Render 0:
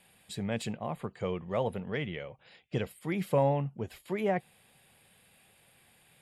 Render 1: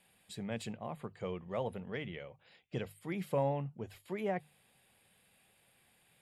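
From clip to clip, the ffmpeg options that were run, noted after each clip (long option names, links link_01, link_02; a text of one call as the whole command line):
ffmpeg -i in.wav -af "bandreject=frequency=50:width_type=h:width=6,bandreject=frequency=100:width_type=h:width=6,bandreject=frequency=150:width_type=h:width=6,volume=-6dB" out.wav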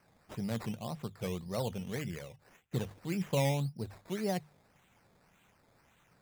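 ffmpeg -i in.wav -af "bass=frequency=250:gain=7,treble=frequency=4000:gain=3,acrusher=samples=12:mix=1:aa=0.000001:lfo=1:lforange=7.2:lforate=1.8" out.wav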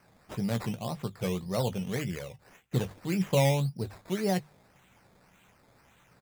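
ffmpeg -i in.wav -filter_complex "[0:a]asplit=2[link_01][link_02];[link_02]adelay=16,volume=-11dB[link_03];[link_01][link_03]amix=inputs=2:normalize=0,volume=5dB" out.wav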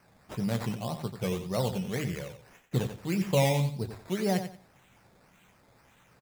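ffmpeg -i in.wav -af "aecho=1:1:90|180|270:0.335|0.0804|0.0193" out.wav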